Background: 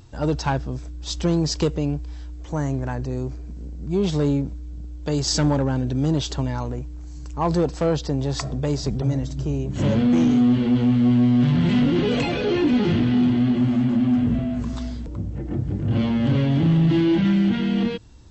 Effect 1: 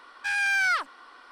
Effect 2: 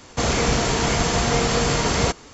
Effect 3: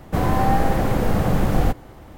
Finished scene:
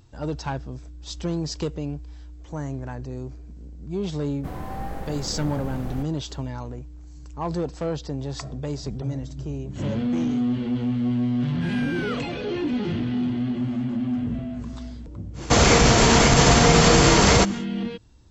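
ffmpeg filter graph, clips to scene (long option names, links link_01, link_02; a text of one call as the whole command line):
ffmpeg -i bed.wav -i cue0.wav -i cue1.wav -i cue2.wav -filter_complex "[0:a]volume=-6.5dB[link_01];[1:a]equalizer=frequency=1200:width=1.5:gain=9[link_02];[2:a]alimiter=level_in=11dB:limit=-1dB:release=50:level=0:latency=1[link_03];[3:a]atrim=end=2.17,asetpts=PTS-STARTPTS,volume=-14.5dB,afade=type=in:duration=0.004:curve=hsin,afade=type=out:start_time=2.166:duration=0.004:curve=hsin,adelay=4310[link_04];[link_02]atrim=end=1.31,asetpts=PTS-STARTPTS,volume=-16.5dB,afade=type=in:duration=0.004:curve=hsin,afade=type=out:start_time=1.306:duration=0.004:curve=hsin,adelay=11370[link_05];[link_03]atrim=end=2.33,asetpts=PTS-STARTPTS,volume=-5dB,afade=type=in:duration=0.1,afade=type=out:start_time=2.23:duration=0.1,adelay=15330[link_06];[link_01][link_04][link_05][link_06]amix=inputs=4:normalize=0" out.wav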